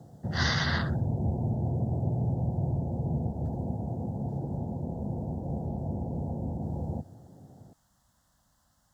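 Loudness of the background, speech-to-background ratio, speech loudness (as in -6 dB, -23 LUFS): -32.5 LUFS, 1.0 dB, -31.5 LUFS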